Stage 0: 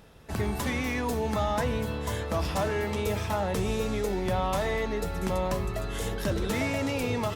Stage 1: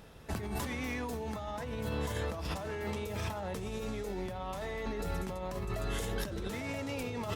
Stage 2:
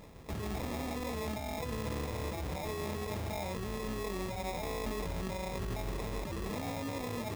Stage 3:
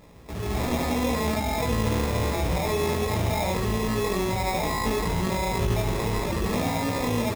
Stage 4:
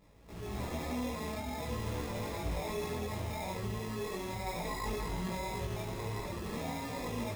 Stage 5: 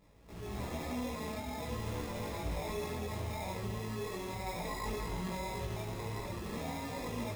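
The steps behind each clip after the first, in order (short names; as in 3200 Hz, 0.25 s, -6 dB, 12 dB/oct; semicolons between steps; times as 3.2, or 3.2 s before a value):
negative-ratio compressor -33 dBFS, ratio -1; gain -4 dB
limiter -30 dBFS, peak gain reduction 7.5 dB; sample-rate reducer 1500 Hz, jitter 0%; gain +1.5 dB
on a send: early reflections 17 ms -5 dB, 73 ms -4.5 dB; on the sum: AGC gain up to 10 dB
pre-echo 92 ms -17 dB; detuned doubles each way 14 cents; gain -8.5 dB
reverb RT60 0.95 s, pre-delay 0.151 s, DRR 13.5 dB; gain -1.5 dB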